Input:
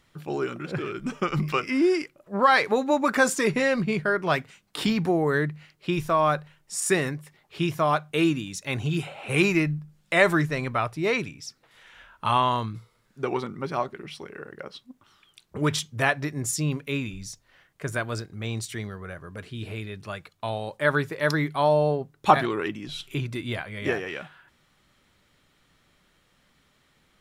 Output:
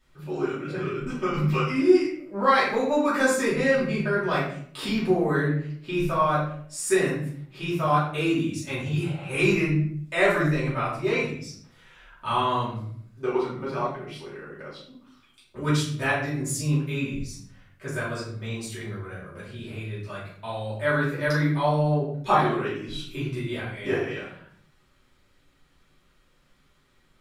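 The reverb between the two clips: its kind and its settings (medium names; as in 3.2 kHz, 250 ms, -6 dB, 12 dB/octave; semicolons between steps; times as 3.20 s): simulated room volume 100 m³, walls mixed, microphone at 2.7 m; trim -11.5 dB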